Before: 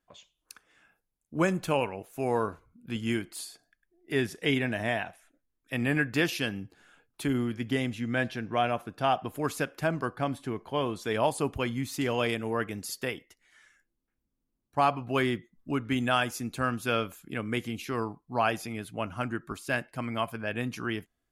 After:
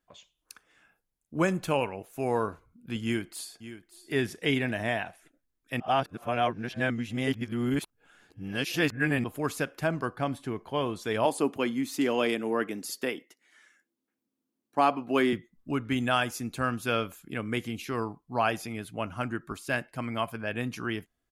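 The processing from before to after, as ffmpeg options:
-filter_complex "[0:a]asplit=2[a][b];[b]afade=t=in:st=3.03:d=0.01,afade=t=out:st=4.13:d=0.01,aecho=0:1:570|1140|1710:0.199526|0.0498816|0.0124704[c];[a][c]amix=inputs=2:normalize=0,asettb=1/sr,asplit=3[d][e][f];[d]atrim=end=11.254[g];[e]atrim=start=11.25:end=15.33,asetpts=PTS-STARTPTS,afade=t=in:d=0.004:c=qsin,afade=t=out:st=4.076:d=0.004:c=qsin,highpass=f=260:t=q:w=1.6[h];[f]atrim=start=15.326[i];[g][h]acrossfade=d=0.004:c1=hsin:c2=qsin[j];[j][i]acrossfade=d=0.004:c1=qsin:c2=hsin,asplit=3[k][l][m];[k]atrim=end=5.802[n];[l]atrim=start=5.798:end=9.242,asetpts=PTS-STARTPTS,areverse[o];[m]atrim=start=9.238[p];[n][o]acrossfade=d=0.004:c1=hsin:c2=hsin[q];[q][p]acrossfade=d=0.004:c1=hsin:c2=hsin"

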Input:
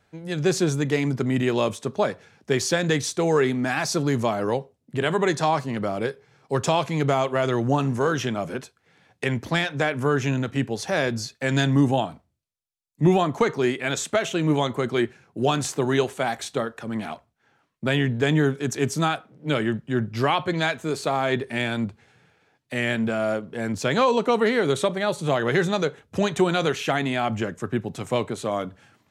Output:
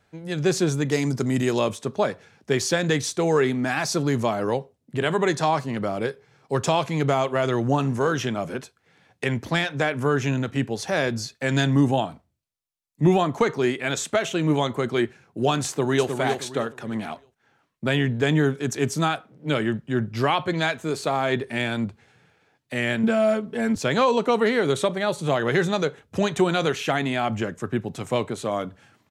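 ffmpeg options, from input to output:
-filter_complex "[0:a]asettb=1/sr,asplit=3[a][b][c];[a]atrim=end=0.914[d];[b]atrim=start=0.91:end=1.59,asetpts=PTS-STARTPTS,afade=t=in:d=0.004:c=qsin,afade=t=out:st=0.676:d=0.004:c=qsin,highshelf=f=4.1k:t=q:w=1.5:g=7.5[e];[c]atrim=start=1.586[f];[d][e]acrossfade=d=0.004:c1=hsin:c2=qsin[g];[g][f]acrossfade=d=0.004:c1=qsin:c2=hsin,asplit=2[h][i];[i]afade=t=in:st=15.67:d=0.01,afade=t=out:st=16.1:d=0.01,aecho=0:1:310|620|930|1240:0.530884|0.159265|0.0477796|0.0143339[j];[h][j]amix=inputs=2:normalize=0,asettb=1/sr,asplit=3[k][l][m];[k]atrim=end=23.034[n];[l]atrim=start=23.03:end=23.76,asetpts=PTS-STARTPTS,afade=t=in:d=0.004:c=qsin,afade=t=out:st=0.726:d=0.004:c=qsin,aecho=1:1:4.6:0.97,atrim=end_sample=32193[o];[m]atrim=start=23.756[p];[n][o]acrossfade=d=0.004:c1=hsin:c2=qsin[q];[q][p]acrossfade=d=0.004:c1=qsin:c2=hsin"

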